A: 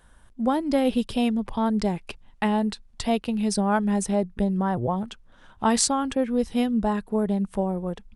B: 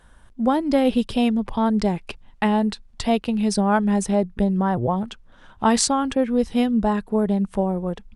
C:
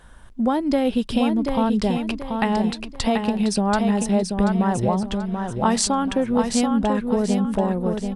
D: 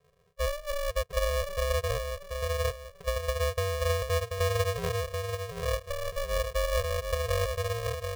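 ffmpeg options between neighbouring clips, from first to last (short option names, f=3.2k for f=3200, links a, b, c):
-af "highshelf=f=10k:g=-8,volume=3.5dB"
-af "acompressor=threshold=-26dB:ratio=2,aecho=1:1:734|1468|2202|2936:0.531|0.186|0.065|0.0228,volume=4.5dB"
-af "asuperpass=centerf=180:order=8:qfactor=1.1,aeval=exprs='val(0)*sgn(sin(2*PI*290*n/s))':c=same,volume=-7dB"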